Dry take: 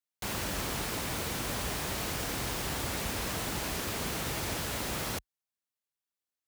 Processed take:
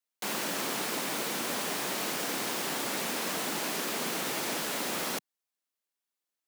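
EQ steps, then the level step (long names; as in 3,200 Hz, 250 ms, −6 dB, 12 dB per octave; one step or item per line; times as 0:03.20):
high-pass filter 200 Hz 24 dB per octave
+2.5 dB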